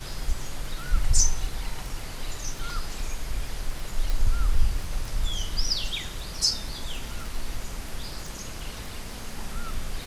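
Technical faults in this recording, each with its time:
surface crackle 14 per second −31 dBFS
0:04.10: click

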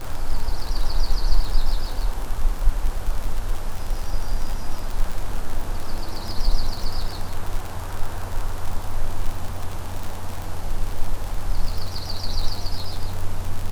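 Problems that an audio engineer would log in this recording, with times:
surface crackle 58 per second −24 dBFS

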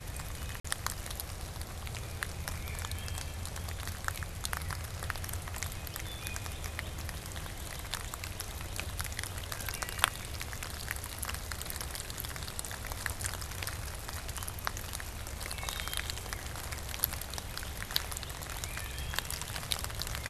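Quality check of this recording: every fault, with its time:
0:00.60–0:00.65: drop-out 45 ms

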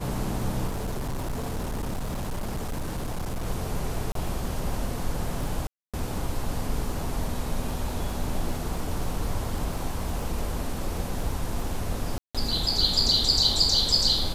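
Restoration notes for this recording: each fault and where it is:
surface crackle 20 per second −32 dBFS
0:00.67–0:03.47: clipping −26.5 dBFS
0:04.12–0:04.15: drop-out 33 ms
0:05.67–0:05.94: drop-out 266 ms
0:12.18–0:12.35: drop-out 166 ms

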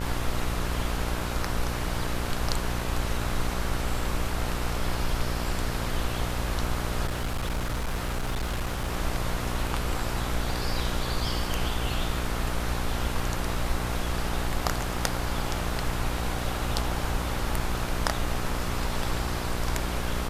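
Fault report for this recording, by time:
mains buzz 60 Hz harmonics 23 −32 dBFS
0:07.06–0:08.93: clipping −25 dBFS

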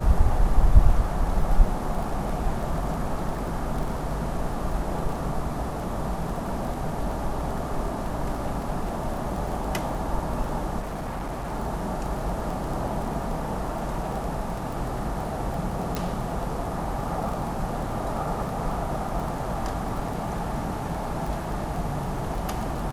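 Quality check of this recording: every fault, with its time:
surface crackle 13 per second −30 dBFS
0:10.79–0:11.54: clipping −28 dBFS
0:15.95: click

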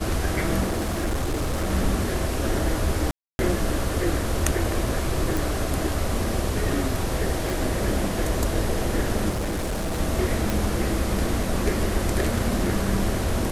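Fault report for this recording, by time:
0:00.65–0:01.71: clipping −21 dBFS
0:03.11–0:03.39: drop-out 281 ms
0:05.37: click
0:07.50: click
0:09.29–0:10.00: clipping −23 dBFS
0:10.50: click

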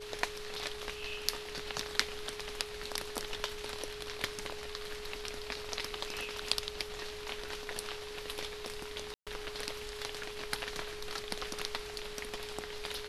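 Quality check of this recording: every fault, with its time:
whistle 420 Hz −44 dBFS
0:09.14–0:09.27: drop-out 127 ms

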